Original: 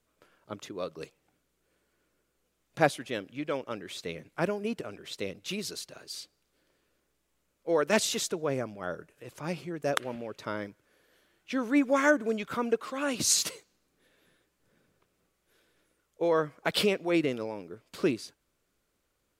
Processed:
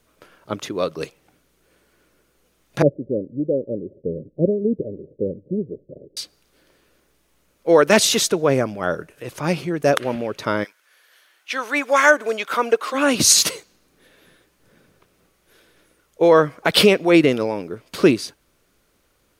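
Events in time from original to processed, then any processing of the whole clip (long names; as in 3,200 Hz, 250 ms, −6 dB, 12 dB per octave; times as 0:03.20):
0:02.82–0:06.17: Chebyshev low-pass filter 570 Hz, order 6
0:10.63–0:12.93: high-pass filter 1,400 Hz → 410 Hz
whole clip: notch filter 7,500 Hz, Q 12; boost into a limiter +14 dB; level −1 dB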